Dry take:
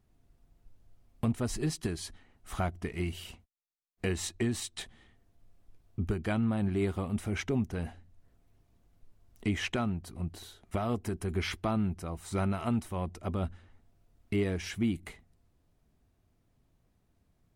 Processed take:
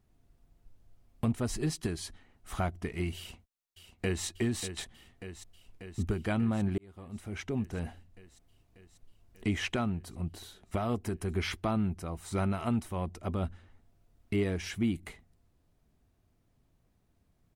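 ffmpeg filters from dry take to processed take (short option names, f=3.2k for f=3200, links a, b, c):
-filter_complex "[0:a]asplit=2[a][b];[b]afade=t=in:st=3.17:d=0.01,afade=t=out:st=4.25:d=0.01,aecho=0:1:590|1180|1770|2360|2950|3540|4130|4720|5310|5900|6490|7080:0.316228|0.237171|0.177878|0.133409|0.100056|0.0750423|0.0562817|0.0422113|0.0316585|0.0237439|0.0178079|0.0133559[c];[a][c]amix=inputs=2:normalize=0,asplit=2[d][e];[d]atrim=end=6.78,asetpts=PTS-STARTPTS,afade=t=out:st=6.776:d=0.004:c=hsin[f];[e]atrim=start=6.78,asetpts=PTS-STARTPTS,afade=t=in:d=1.11[g];[f][g]concat=n=2:v=0:a=1"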